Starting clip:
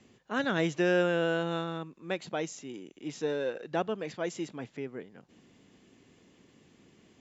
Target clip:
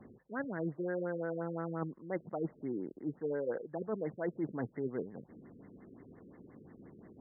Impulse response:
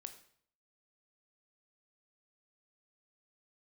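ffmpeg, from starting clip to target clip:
-af "areverse,acompressor=threshold=-38dB:ratio=12,areverse,afftfilt=real='re*lt(b*sr/1024,500*pow(2200/500,0.5+0.5*sin(2*PI*5.7*pts/sr)))':imag='im*lt(b*sr/1024,500*pow(2200/500,0.5+0.5*sin(2*PI*5.7*pts/sr)))':win_size=1024:overlap=0.75,volume=6dB"

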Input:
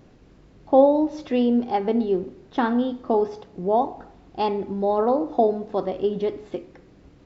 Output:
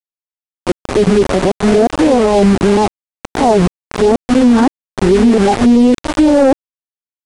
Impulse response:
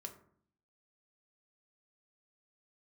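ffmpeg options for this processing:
-af "areverse,aemphasis=mode=reproduction:type=riaa,aeval=exprs='val(0)*gte(abs(val(0)),0.0562)':channel_layout=same,aeval=exprs='0.891*(cos(1*acos(clip(val(0)/0.891,-1,1)))-cos(1*PI/2))+0.0631*(cos(5*acos(clip(val(0)/0.891,-1,1)))-cos(5*PI/2))':channel_layout=same,aresample=22050,aresample=44100,asoftclip=type=tanh:threshold=-3.5dB,alimiter=level_in=14.5dB:limit=-1dB:release=50:level=0:latency=1,volume=-2.5dB"

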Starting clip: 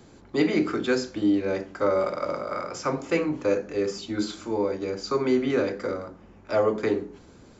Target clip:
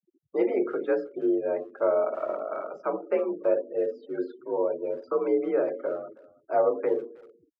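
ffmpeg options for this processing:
ffmpeg -i in.wav -filter_complex "[0:a]afftfilt=real='re*gte(hypot(re,im),0.0251)':imag='im*gte(hypot(re,im),0.0251)':win_size=1024:overlap=0.75,lowpass=frequency=6800:width=0.5412,lowpass=frequency=6800:width=1.3066,tiltshelf=frequency=1100:gain=9.5,afreqshift=49,acrossover=split=390 2700:gain=0.0891 1 0.0794[link_01][link_02][link_03];[link_01][link_02][link_03]amix=inputs=3:normalize=0,asplit=2[link_04][link_05];[link_05]adelay=320,highpass=300,lowpass=3400,asoftclip=type=hard:threshold=-20dB,volume=-22dB[link_06];[link_04][link_06]amix=inputs=2:normalize=0,volume=-4dB" out.wav

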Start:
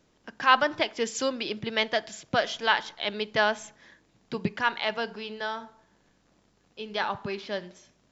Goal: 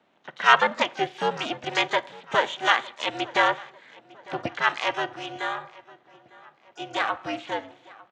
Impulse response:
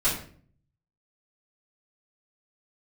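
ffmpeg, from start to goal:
-filter_complex "[0:a]highpass=frequency=280:width_type=q:width=0.5412,highpass=frequency=280:width_type=q:width=1.307,lowpass=frequency=3400:width_type=q:width=0.5176,lowpass=frequency=3400:width_type=q:width=0.7071,lowpass=frequency=3400:width_type=q:width=1.932,afreqshift=110,aeval=exprs='val(0)*sin(2*PI*190*n/s)':channel_layout=same,asplit=2[link_01][link_02];[link_02]adelay=902,lowpass=frequency=2600:poles=1,volume=-21dB,asplit=2[link_03][link_04];[link_04]adelay=902,lowpass=frequency=2600:poles=1,volume=0.47,asplit=2[link_05][link_06];[link_06]adelay=902,lowpass=frequency=2600:poles=1,volume=0.47[link_07];[link_03][link_05][link_07]amix=inputs=3:normalize=0[link_08];[link_01][link_08]amix=inputs=2:normalize=0,asplit=3[link_09][link_10][link_11];[link_10]asetrate=35002,aresample=44100,atempo=1.25992,volume=-17dB[link_12];[link_11]asetrate=88200,aresample=44100,atempo=0.5,volume=-15dB[link_13];[link_09][link_12][link_13]amix=inputs=3:normalize=0,volume=6dB"

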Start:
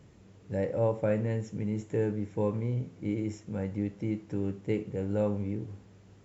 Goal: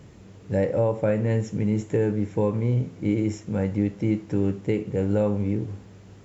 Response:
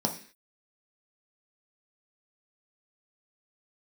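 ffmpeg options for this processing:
-af "alimiter=limit=-20.5dB:level=0:latency=1:release=249,volume=8.5dB"

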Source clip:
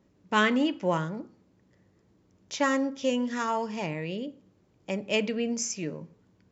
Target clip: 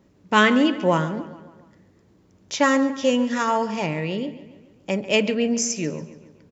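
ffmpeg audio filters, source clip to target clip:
ffmpeg -i in.wav -filter_complex "[0:a]asplit=2[link_01][link_02];[link_02]adelay=141,lowpass=frequency=4800:poles=1,volume=-15dB,asplit=2[link_03][link_04];[link_04]adelay=141,lowpass=frequency=4800:poles=1,volume=0.55,asplit=2[link_05][link_06];[link_06]adelay=141,lowpass=frequency=4800:poles=1,volume=0.55,asplit=2[link_07][link_08];[link_08]adelay=141,lowpass=frequency=4800:poles=1,volume=0.55,asplit=2[link_09][link_10];[link_10]adelay=141,lowpass=frequency=4800:poles=1,volume=0.55[link_11];[link_01][link_03][link_05][link_07][link_09][link_11]amix=inputs=6:normalize=0,volume=7dB" out.wav

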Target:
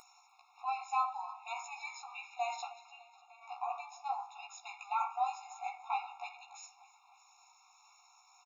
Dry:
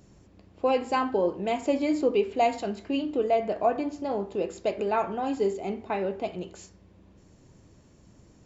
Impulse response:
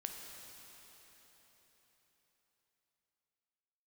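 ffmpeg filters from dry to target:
-filter_complex "[0:a]acompressor=mode=upward:threshold=-41dB:ratio=2.5,alimiter=limit=-21dB:level=0:latency=1:release=27,asplit=3[link_01][link_02][link_03];[link_01]afade=type=out:start_time=2.71:duration=0.02[link_04];[link_02]acompressor=threshold=-40dB:ratio=6,afade=type=in:start_time=2.71:duration=0.02,afade=type=out:start_time=3.41:duration=0.02[link_05];[link_03]afade=type=in:start_time=3.41:duration=0.02[link_06];[link_04][link_05][link_06]amix=inputs=3:normalize=0,flanger=delay=15:depth=2.1:speed=0.48,aecho=1:1:296|592|888|1184|1480:0.1|0.058|0.0336|0.0195|0.0113,asplit=2[link_07][link_08];[1:a]atrim=start_sample=2205,asetrate=79380,aresample=44100[link_09];[link_08][link_09]afir=irnorm=-1:irlink=0,volume=-9.5dB[link_10];[link_07][link_10]amix=inputs=2:normalize=0,afftfilt=real='re*eq(mod(floor(b*sr/1024/710),2),1)':imag='im*eq(mod(floor(b*sr/1024/710),2),1)':win_size=1024:overlap=0.75,volume=2dB"

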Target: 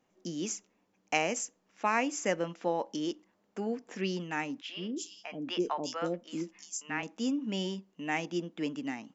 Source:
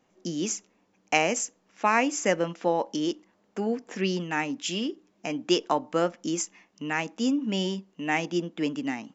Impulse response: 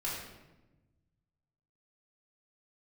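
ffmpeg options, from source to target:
-filter_complex "[0:a]asettb=1/sr,asplit=3[link_01][link_02][link_03];[link_01]atrim=end=4.614[link_04];[link_02]atrim=start=4.61:end=7.03,asetpts=PTS-STARTPTS,afade=type=in:duration=0.004:curve=qsin,afade=type=out:start_time=2.416:duration=0.004:curve=qsin,acrossover=split=600|4100[link_05][link_06][link_07];[link_05]adelay=80[link_08];[link_07]adelay=350[link_09];[link_08][link_06][link_09]amix=inputs=3:normalize=0,atrim=end_sample=106722[link_10];[link_03]atrim=start=7.026[link_11];[link_04][link_10]acrossfade=duration=0.004:curve1=hsin:curve2=qsin[link_12];[link_12][link_11]acrossfade=duration=0.004:curve1=qsin:curve2=hsin,volume=-6dB"

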